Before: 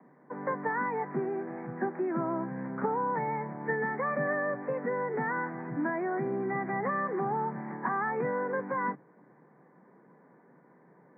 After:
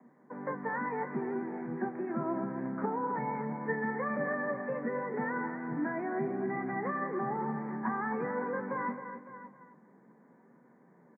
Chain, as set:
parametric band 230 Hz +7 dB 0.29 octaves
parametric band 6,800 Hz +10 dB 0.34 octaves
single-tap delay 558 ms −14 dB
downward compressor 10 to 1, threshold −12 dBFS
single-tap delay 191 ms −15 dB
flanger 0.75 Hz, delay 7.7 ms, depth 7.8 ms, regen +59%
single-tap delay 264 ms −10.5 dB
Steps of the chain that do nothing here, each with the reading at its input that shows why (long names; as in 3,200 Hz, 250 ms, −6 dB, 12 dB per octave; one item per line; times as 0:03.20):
parametric band 6,800 Hz: nothing at its input above 2,300 Hz
downward compressor, threshold −12 dBFS: peak of its input −17.0 dBFS